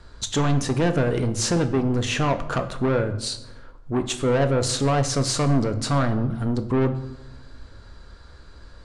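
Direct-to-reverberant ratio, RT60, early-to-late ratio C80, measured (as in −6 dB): 7.5 dB, 0.95 s, 15.0 dB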